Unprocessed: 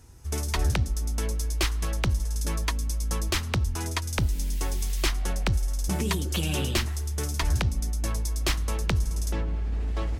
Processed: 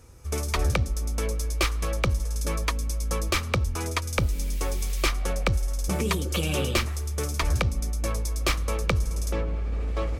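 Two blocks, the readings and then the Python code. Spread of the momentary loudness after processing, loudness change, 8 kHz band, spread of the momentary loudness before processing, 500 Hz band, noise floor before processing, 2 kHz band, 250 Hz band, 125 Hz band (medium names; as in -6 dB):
4 LU, +1.0 dB, 0.0 dB, 4 LU, +5.0 dB, -32 dBFS, +3.0 dB, +0.5 dB, 0.0 dB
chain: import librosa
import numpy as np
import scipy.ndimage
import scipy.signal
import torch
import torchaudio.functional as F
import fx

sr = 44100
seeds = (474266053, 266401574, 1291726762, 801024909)

y = fx.small_body(x, sr, hz=(520.0, 1200.0, 2300.0), ring_ms=25, db=10)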